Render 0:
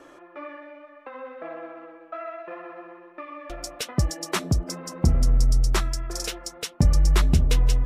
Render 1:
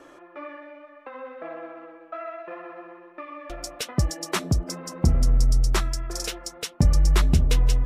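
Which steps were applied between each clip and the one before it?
no audible change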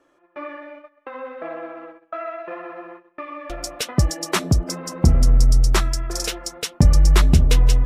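gate -44 dBFS, range -18 dB; trim +5 dB

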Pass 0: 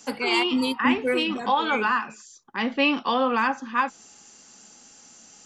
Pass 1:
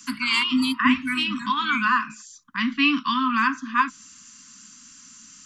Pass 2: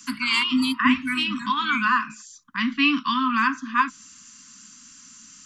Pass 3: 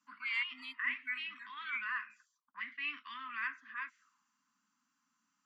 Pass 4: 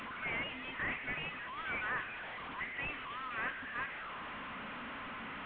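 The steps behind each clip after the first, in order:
Chebyshev band-stop 290–1000 Hz, order 5; trim +3.5 dB
no audible change
transient shaper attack -8 dB, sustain -1 dB; auto-wah 620–2000 Hz, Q 5.6, up, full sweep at -26.5 dBFS; trim -4.5 dB
one-bit delta coder 16 kbps, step -40.5 dBFS; trim +2.5 dB

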